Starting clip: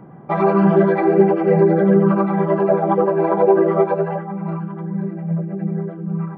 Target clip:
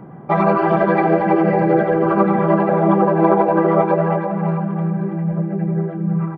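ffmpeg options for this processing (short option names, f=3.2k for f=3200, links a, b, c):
-af "afftfilt=real='re*lt(hypot(re,im),1.26)':imag='im*lt(hypot(re,im),1.26)':win_size=1024:overlap=0.75,aecho=1:1:329|658|987|1316|1645:0.422|0.173|0.0709|0.0291|0.0119,volume=3.5dB"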